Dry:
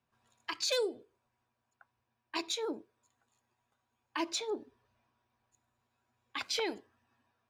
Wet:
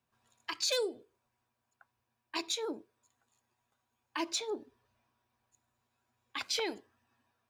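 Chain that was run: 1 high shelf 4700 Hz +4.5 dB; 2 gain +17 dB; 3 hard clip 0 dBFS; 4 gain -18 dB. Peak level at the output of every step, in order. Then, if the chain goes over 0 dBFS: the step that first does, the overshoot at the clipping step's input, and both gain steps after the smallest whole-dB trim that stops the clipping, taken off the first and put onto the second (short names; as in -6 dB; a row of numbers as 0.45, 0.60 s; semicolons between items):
-20.5, -3.5, -3.5, -21.5 dBFS; no overload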